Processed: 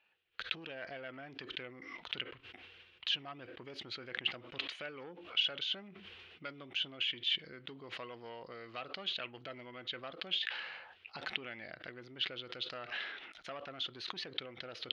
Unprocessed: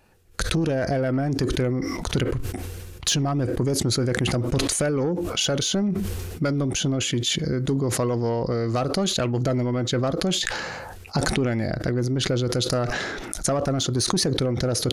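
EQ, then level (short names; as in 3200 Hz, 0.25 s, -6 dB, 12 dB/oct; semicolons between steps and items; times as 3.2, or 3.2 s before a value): band-pass 3000 Hz, Q 3.1; air absorption 360 m; +3.0 dB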